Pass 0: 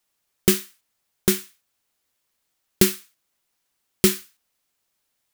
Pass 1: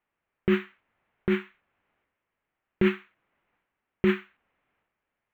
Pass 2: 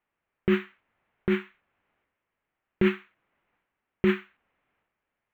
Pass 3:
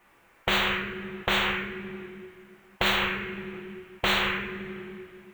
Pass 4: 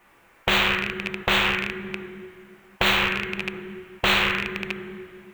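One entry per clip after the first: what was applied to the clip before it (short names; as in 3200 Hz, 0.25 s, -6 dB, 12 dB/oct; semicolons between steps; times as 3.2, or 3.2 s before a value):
inverse Chebyshev low-pass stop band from 4700 Hz, stop band 40 dB; transient shaper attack -7 dB, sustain +8 dB
nothing audible
two-slope reverb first 0.54 s, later 2.4 s, from -25 dB, DRR -2 dB; spectral compressor 10:1; gain -5.5 dB
rattling part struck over -37 dBFS, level -15 dBFS; gain +3.5 dB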